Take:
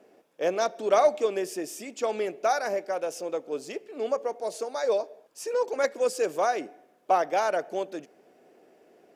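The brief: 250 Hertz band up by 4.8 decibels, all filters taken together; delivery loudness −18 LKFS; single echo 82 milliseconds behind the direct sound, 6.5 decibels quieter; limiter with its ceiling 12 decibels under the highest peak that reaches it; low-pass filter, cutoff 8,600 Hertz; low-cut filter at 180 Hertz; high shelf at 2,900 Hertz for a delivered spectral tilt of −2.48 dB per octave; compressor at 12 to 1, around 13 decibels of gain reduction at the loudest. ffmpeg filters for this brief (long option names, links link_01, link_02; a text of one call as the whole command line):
ffmpeg -i in.wav -af "highpass=180,lowpass=8600,equalizer=frequency=250:width_type=o:gain=8,highshelf=frequency=2900:gain=6.5,acompressor=threshold=-28dB:ratio=12,alimiter=level_in=5dB:limit=-24dB:level=0:latency=1,volume=-5dB,aecho=1:1:82:0.473,volume=19dB" out.wav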